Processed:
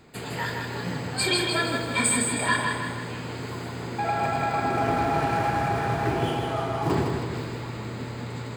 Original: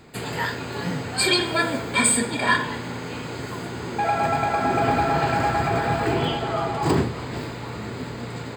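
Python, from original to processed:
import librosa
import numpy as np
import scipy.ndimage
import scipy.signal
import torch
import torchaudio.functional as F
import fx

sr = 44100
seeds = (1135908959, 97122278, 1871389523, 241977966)

y = fx.median_filter(x, sr, points=9, at=(4.7, 6.91))
y = fx.echo_feedback(y, sr, ms=159, feedback_pct=49, wet_db=-4.5)
y = y * 10.0 ** (-4.5 / 20.0)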